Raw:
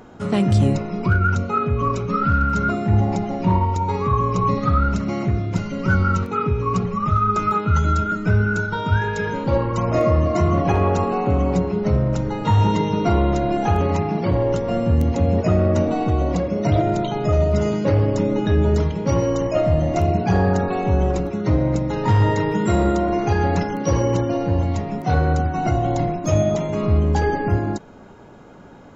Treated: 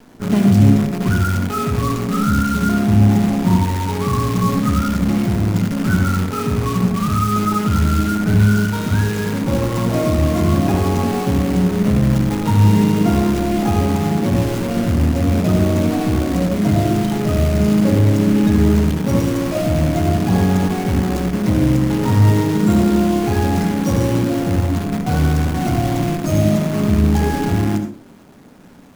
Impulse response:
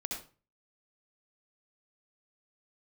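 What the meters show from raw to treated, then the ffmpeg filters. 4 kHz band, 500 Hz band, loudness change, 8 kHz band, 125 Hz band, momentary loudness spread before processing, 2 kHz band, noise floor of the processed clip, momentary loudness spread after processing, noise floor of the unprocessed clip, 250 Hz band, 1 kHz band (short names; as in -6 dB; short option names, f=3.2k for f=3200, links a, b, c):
+7.0 dB, -1.0 dB, +3.5 dB, n/a, +3.0 dB, 4 LU, +0.5 dB, -24 dBFS, 5 LU, -30 dBFS, +6.5 dB, -1.5 dB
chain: -filter_complex "[0:a]acontrast=46,acrusher=bits=4:dc=4:mix=0:aa=0.000001,asplit=2[a][b];[b]equalizer=f=125:t=o:w=1:g=6,equalizer=f=250:t=o:w=1:g=12,equalizer=f=4k:t=o:w=1:g=-4[c];[1:a]atrim=start_sample=2205,asetrate=42777,aresample=44100[d];[c][d]afir=irnorm=-1:irlink=0,volume=-1dB[e];[a][e]amix=inputs=2:normalize=0,volume=-12.5dB"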